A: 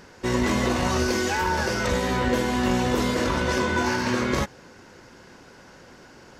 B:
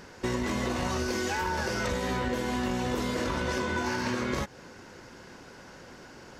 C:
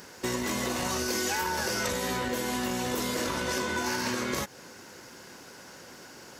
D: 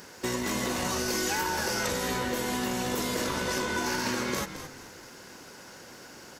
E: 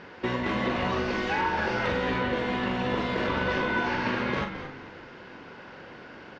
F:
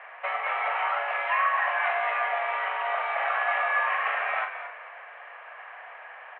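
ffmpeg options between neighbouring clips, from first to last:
ffmpeg -i in.wav -af "acompressor=threshold=-27dB:ratio=5" out.wav
ffmpeg -i in.wav -af "highpass=frequency=150:poles=1,aemphasis=mode=production:type=50fm" out.wav
ffmpeg -i in.wav -filter_complex "[0:a]asplit=4[link_01][link_02][link_03][link_04];[link_02]adelay=217,afreqshift=-53,volume=-10.5dB[link_05];[link_03]adelay=434,afreqshift=-106,volume=-20.4dB[link_06];[link_04]adelay=651,afreqshift=-159,volume=-30.3dB[link_07];[link_01][link_05][link_06][link_07]amix=inputs=4:normalize=0" out.wav
ffmpeg -i in.wav -filter_complex "[0:a]lowpass=frequency=3200:width=0.5412,lowpass=frequency=3200:width=1.3066,asplit=2[link_01][link_02];[link_02]adelay=42,volume=-6.5dB[link_03];[link_01][link_03]amix=inputs=2:normalize=0,volume=3dB" out.wav
ffmpeg -i in.wav -af "aeval=exprs='val(0)+0.0112*(sin(2*PI*60*n/s)+sin(2*PI*2*60*n/s)/2+sin(2*PI*3*60*n/s)/3+sin(2*PI*4*60*n/s)/4+sin(2*PI*5*60*n/s)/5)':channel_layout=same,highpass=frequency=490:width_type=q:width=0.5412,highpass=frequency=490:width_type=q:width=1.307,lowpass=frequency=2400:width_type=q:width=0.5176,lowpass=frequency=2400:width_type=q:width=0.7071,lowpass=frequency=2400:width_type=q:width=1.932,afreqshift=200,volume=3.5dB" out.wav

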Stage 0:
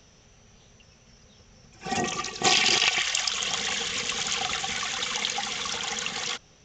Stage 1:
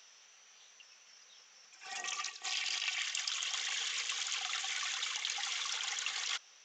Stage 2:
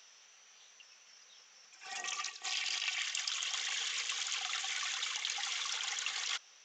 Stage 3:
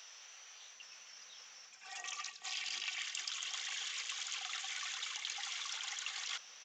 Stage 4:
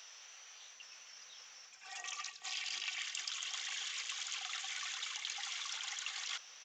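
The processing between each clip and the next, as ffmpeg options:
ffmpeg -i in.wav -af "areverse,acompressor=threshold=-33dB:ratio=10,areverse,highpass=1200" out.wav
ffmpeg -i in.wav -af anull out.wav
ffmpeg -i in.wav -filter_complex "[0:a]areverse,acompressor=mode=upward:threshold=-40dB:ratio=2.5,areverse,acrossover=split=390[link_01][link_02];[link_01]adelay=750[link_03];[link_03][link_02]amix=inputs=2:normalize=0,volume=-4.5dB" out.wav
ffmpeg -i in.wav -af "asubboost=boost=9.5:cutoff=67" out.wav

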